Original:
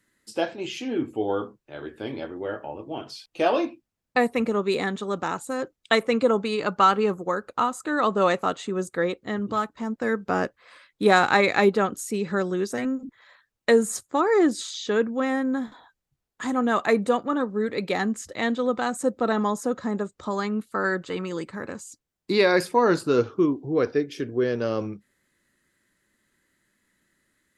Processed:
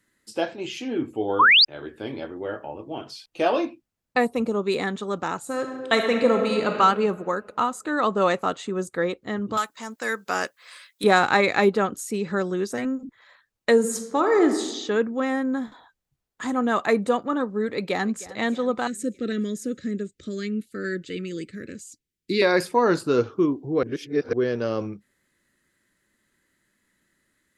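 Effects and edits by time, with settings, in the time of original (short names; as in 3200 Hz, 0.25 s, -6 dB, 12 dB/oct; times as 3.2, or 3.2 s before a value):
1.39–1.65 painted sound rise 930–5200 Hz -14 dBFS
4.25–4.67 bell 1900 Hz -11.5 dB 0.9 oct
5.38–6.71 reverb throw, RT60 1.8 s, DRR 3 dB
9.57–11.04 tilt +4.5 dB/oct
13.73–14.55 reverb throw, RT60 1.1 s, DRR 6 dB
17.74–18.3 echo throw 0.31 s, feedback 60%, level -18 dB
18.87–22.42 Chebyshev band-stop 380–2100 Hz
23.83–24.33 reverse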